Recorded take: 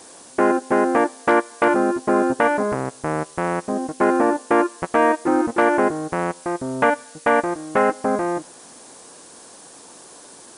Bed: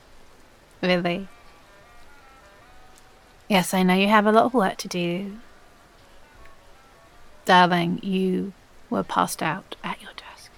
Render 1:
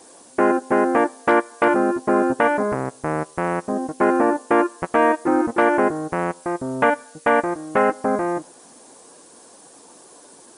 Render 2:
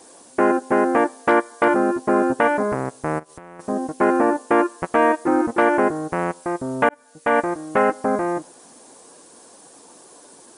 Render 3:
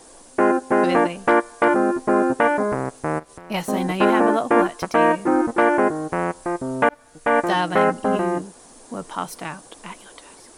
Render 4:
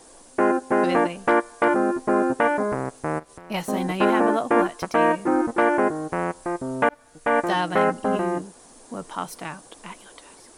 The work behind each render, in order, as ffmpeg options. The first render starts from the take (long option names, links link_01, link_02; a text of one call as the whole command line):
ffmpeg -i in.wav -af "afftdn=noise_reduction=6:noise_floor=-44" out.wav
ffmpeg -i in.wav -filter_complex "[0:a]asettb=1/sr,asplit=3[link_01][link_02][link_03];[link_01]atrim=end=1.334[link_04];[link_02]atrim=start=1.33:end=1.83,asetpts=PTS-STARTPTS,afade=type=in:duration=0.004:curve=qsin,afade=type=out:start_time=0.496:duration=0.004:curve=qsin,bandreject=frequency=2600:width=11[link_05];[link_03]atrim=start=1.826[link_06];[link_04][link_05]acrossfade=duration=0.004:curve1=hsin:curve2=qsin[link_07];[link_07][link_06]acrossfade=duration=0.004:curve1=qsin:curve2=hsin,asplit=3[link_08][link_09][link_10];[link_08]afade=type=out:start_time=3.18:duration=0.02[link_11];[link_09]acompressor=threshold=-35dB:ratio=20:attack=3.2:release=140:knee=1:detection=peak,afade=type=in:start_time=3.18:duration=0.02,afade=type=out:start_time=3.59:duration=0.02[link_12];[link_10]afade=type=in:start_time=3.59:duration=0.02[link_13];[link_11][link_12][link_13]amix=inputs=3:normalize=0,asplit=2[link_14][link_15];[link_14]atrim=end=6.89,asetpts=PTS-STARTPTS,afade=type=out:start_time=6.886:duration=0.004:curve=hsin[link_16];[link_15]atrim=start=6.89,asetpts=PTS-STARTPTS,afade=type=in:duration=0.5[link_17];[link_16][link_17]concat=n=2:v=0:a=1" out.wav
ffmpeg -i in.wav -i bed.wav -filter_complex "[1:a]volume=-6.5dB[link_01];[0:a][link_01]amix=inputs=2:normalize=0" out.wav
ffmpeg -i in.wav -af "volume=-2.5dB" out.wav